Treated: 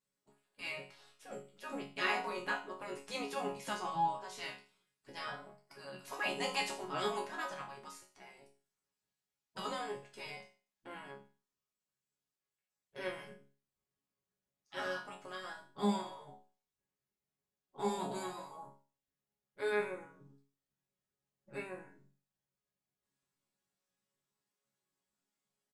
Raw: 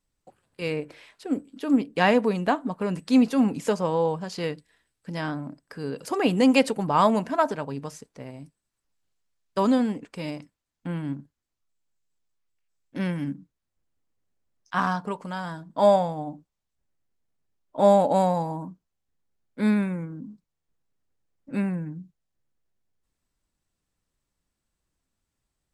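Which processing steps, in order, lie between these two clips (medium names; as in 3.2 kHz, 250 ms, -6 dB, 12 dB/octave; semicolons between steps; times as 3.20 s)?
spectral gate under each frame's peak -10 dB weak; chord resonator C#3 sus4, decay 0.37 s; delay 79 ms -23 dB; trim +10 dB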